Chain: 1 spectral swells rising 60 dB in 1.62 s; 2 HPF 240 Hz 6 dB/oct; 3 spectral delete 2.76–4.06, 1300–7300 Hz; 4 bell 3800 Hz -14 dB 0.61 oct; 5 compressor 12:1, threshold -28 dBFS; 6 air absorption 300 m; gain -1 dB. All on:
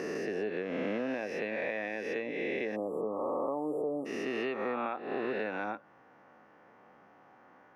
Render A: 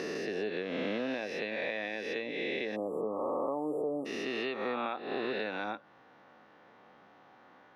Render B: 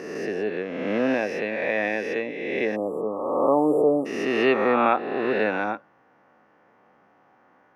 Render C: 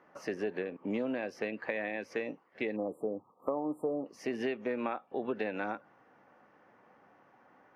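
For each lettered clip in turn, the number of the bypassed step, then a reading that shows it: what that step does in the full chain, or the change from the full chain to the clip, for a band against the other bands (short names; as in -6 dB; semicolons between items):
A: 4, 4 kHz band +8.0 dB; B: 5, mean gain reduction 9.0 dB; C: 1, 250 Hz band +2.5 dB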